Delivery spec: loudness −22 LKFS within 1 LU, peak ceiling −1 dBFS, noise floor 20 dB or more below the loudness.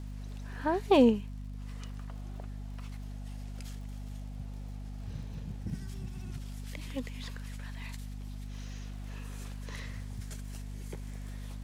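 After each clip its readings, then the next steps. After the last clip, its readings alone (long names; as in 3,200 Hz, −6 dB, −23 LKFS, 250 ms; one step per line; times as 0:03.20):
crackle rate 46 per second; mains hum 50 Hz; hum harmonics up to 250 Hz; level of the hum −38 dBFS; integrated loudness −36.5 LKFS; sample peak −11.5 dBFS; target loudness −22.0 LKFS
→ click removal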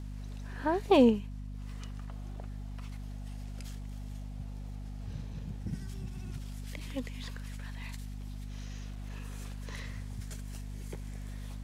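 crackle rate 0.52 per second; mains hum 50 Hz; hum harmonics up to 250 Hz; level of the hum −38 dBFS
→ mains-hum notches 50/100/150/200/250 Hz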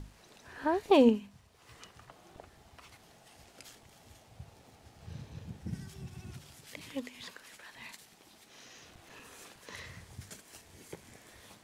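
mains hum none found; integrated loudness −32.0 LKFS; sample peak −12.0 dBFS; target loudness −22.0 LKFS
→ level +10 dB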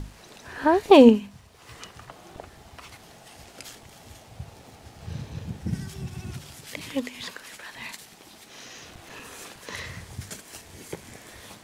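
integrated loudness −22.0 LKFS; sample peak −2.0 dBFS; background noise floor −51 dBFS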